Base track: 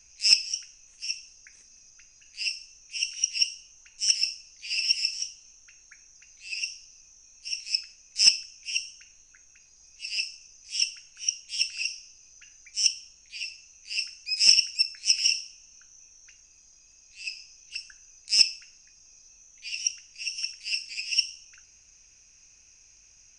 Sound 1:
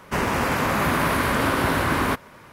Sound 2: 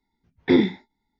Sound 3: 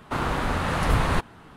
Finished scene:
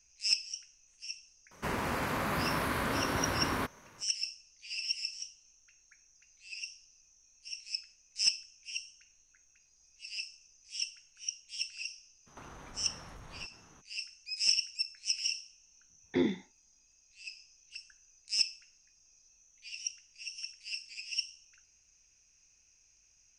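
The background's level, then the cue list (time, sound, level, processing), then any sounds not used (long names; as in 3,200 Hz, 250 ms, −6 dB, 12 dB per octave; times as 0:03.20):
base track −10 dB
0:01.51: mix in 1 −11 dB + parametric band 4,300 Hz +2.5 dB 0.3 octaves
0:12.26: mix in 3 −12 dB, fades 0.02 s + downward compressor 10 to 1, threshold −34 dBFS
0:15.66: mix in 2 −12 dB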